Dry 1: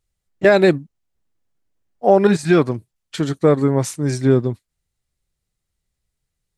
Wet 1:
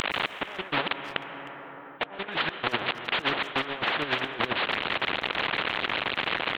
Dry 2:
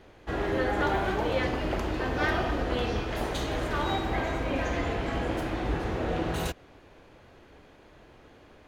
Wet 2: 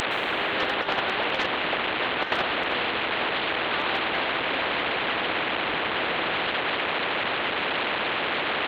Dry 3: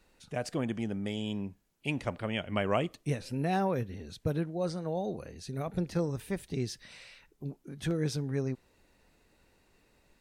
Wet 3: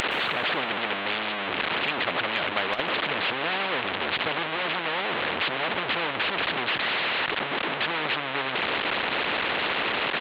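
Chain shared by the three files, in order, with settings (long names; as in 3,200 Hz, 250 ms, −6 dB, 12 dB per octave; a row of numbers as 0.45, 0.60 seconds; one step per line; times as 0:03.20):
linear delta modulator 16 kbit/s, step −24 dBFS
high-pass filter 380 Hz 12 dB per octave
noise gate −26 dBFS, range −11 dB
dynamic equaliser 2,300 Hz, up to −5 dB, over −48 dBFS, Q 3.3
harmonic and percussive parts rebalanced percussive +8 dB
spectral tilt +1.5 dB per octave
compressor whose output falls as the input rises −31 dBFS, ratio −0.5
far-end echo of a speakerphone 310 ms, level −25 dB
dense smooth reverb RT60 4.7 s, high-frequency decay 0.4×, pre-delay 105 ms, DRR 17 dB
every bin compressed towards the loudest bin 2 to 1
normalise the peak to −9 dBFS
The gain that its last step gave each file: +1.5, +11.5, +12.5 decibels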